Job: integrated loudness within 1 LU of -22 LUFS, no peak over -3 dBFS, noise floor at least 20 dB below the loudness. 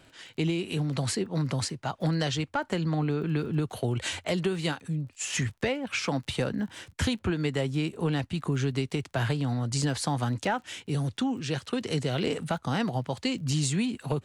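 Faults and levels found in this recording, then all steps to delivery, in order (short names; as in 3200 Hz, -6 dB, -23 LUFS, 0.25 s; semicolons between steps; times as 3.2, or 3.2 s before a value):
ticks 27/s; loudness -29.5 LUFS; peak -16.5 dBFS; loudness target -22.0 LUFS
-> de-click; gain +7.5 dB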